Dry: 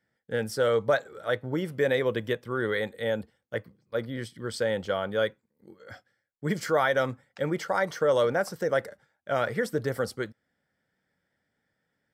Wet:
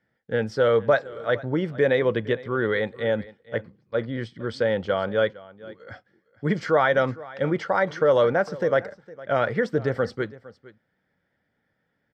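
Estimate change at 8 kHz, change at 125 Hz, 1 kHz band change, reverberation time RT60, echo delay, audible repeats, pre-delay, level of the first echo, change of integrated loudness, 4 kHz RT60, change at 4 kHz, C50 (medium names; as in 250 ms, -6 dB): no reading, +5.0 dB, +4.0 dB, no reverb, 459 ms, 1, no reverb, -19.5 dB, +4.5 dB, no reverb, +0.5 dB, no reverb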